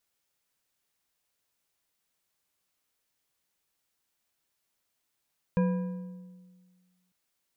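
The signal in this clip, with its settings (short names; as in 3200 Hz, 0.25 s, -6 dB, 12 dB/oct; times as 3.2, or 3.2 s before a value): metal hit bar, lowest mode 182 Hz, decay 1.70 s, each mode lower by 7 dB, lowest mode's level -21 dB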